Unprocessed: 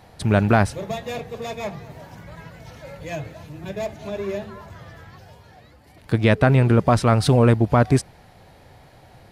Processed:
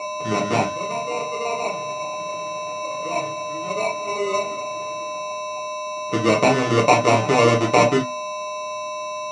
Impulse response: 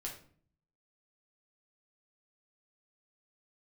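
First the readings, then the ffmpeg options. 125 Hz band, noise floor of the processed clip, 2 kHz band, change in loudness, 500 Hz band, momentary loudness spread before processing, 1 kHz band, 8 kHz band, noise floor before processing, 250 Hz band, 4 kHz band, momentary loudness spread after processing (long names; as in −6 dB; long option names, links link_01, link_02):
−9.0 dB, −29 dBFS, +3.5 dB, −2.0 dB, +3.0 dB, 18 LU, +6.0 dB, +8.0 dB, −50 dBFS, −3.0 dB, +6.0 dB, 12 LU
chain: -filter_complex "[0:a]acrossover=split=600|940[link_01][link_02][link_03];[link_02]dynaudnorm=framelen=390:gausssize=5:maxgain=14.5dB[link_04];[link_01][link_04][link_03]amix=inputs=3:normalize=0,aeval=exprs='val(0)+0.0891*sin(2*PI*610*n/s)':channel_layout=same,bandreject=frequency=50:width_type=h:width=6,bandreject=frequency=100:width_type=h:width=6,bandreject=frequency=150:width_type=h:width=6,bandreject=frequency=200:width_type=h:width=6,bandreject=frequency=250:width_type=h:width=6,asplit=2[link_05][link_06];[link_06]aeval=exprs='sgn(val(0))*max(abs(val(0))-0.015,0)':channel_layout=same,volume=-3dB[link_07];[link_05][link_07]amix=inputs=2:normalize=0,acrusher=samples=27:mix=1:aa=0.000001,highpass=180,equalizer=frequency=260:width_type=q:width=4:gain=4,equalizer=frequency=910:width_type=q:width=4:gain=-3,equalizer=frequency=4200:width_type=q:width=4:gain=-8,lowpass=frequency=6500:width=0.5412,lowpass=frequency=6500:width=1.3066[link_08];[1:a]atrim=start_sample=2205,atrim=end_sample=3087[link_09];[link_08][link_09]afir=irnorm=-1:irlink=0,volume=-5dB"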